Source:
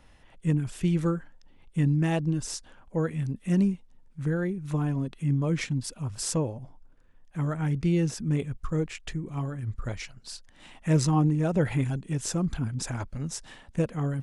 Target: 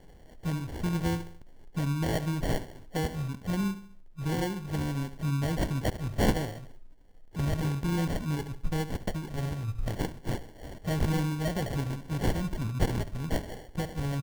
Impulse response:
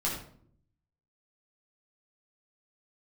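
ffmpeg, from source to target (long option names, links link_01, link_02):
-filter_complex "[0:a]alimiter=limit=-20dB:level=0:latency=1:release=499,tiltshelf=frequency=660:gain=-7,asplit=2[link_01][link_02];[link_02]aecho=0:1:71|142|213|284:0.224|0.0963|0.0414|0.0178[link_03];[link_01][link_03]amix=inputs=2:normalize=0,acrusher=samples=35:mix=1:aa=0.000001,lowshelf=frequency=140:gain=9.5"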